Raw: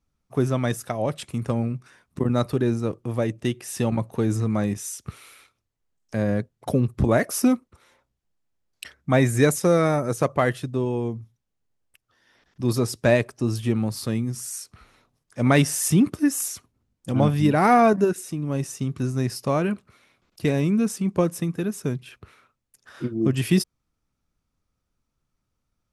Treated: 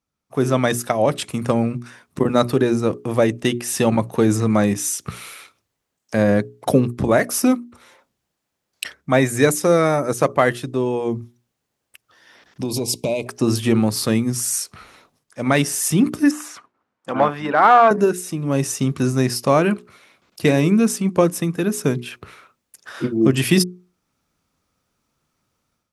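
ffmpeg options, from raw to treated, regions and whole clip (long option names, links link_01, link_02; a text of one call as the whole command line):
ffmpeg -i in.wav -filter_complex "[0:a]asettb=1/sr,asplit=3[link_01][link_02][link_03];[link_01]atrim=end=12.624[link_04];[link_02]atrim=start=12.62:end=13.27,asetpts=PTS-STARTPTS,afade=type=in:duration=0.004:curve=qsin,afade=type=out:start_time=0.646:duration=0.004:curve=qsin,asuperstop=centerf=1500:order=20:qfactor=1.4,acompressor=threshold=-26dB:ratio=16:attack=3.2:release=140:knee=1:detection=peak[link_05];[link_03]atrim=start=13.266[link_06];[link_04][link_05]acrossfade=duration=0.004:curve1=hsin:curve2=qsin[link_07];[link_07][link_06]acrossfade=duration=0.004:curve1=qsin:curve2=hsin,asettb=1/sr,asplit=3[link_08][link_09][link_10];[link_08]atrim=end=16.314[link_11];[link_09]atrim=start=16.31:end=17.91,asetpts=PTS-STARTPTS,afade=type=in:duration=0.004:curve=qsin,afade=type=out:start_time=1.596:duration=0.004:curve=qsin,equalizer=frequency=1300:width=1.1:gain=5.5,volume=9.5dB,asoftclip=hard,volume=-9.5dB,bandpass=frequency=1000:width_type=q:width=0.75[link_12];[link_10]atrim=start=17.906[link_13];[link_11][link_12]acrossfade=duration=0.004:curve1=hsin:curve2=qsin[link_14];[link_14][link_13]acrossfade=duration=0.004:curve1=qsin:curve2=hsin,highpass=frequency=210:poles=1,bandreject=frequency=60:width_type=h:width=6,bandreject=frequency=120:width_type=h:width=6,bandreject=frequency=180:width_type=h:width=6,bandreject=frequency=240:width_type=h:width=6,bandreject=frequency=300:width_type=h:width=6,bandreject=frequency=360:width_type=h:width=6,bandreject=frequency=420:width_type=h:width=6,dynaudnorm=framelen=260:gausssize=3:maxgain=12.5dB,volume=-1dB" out.wav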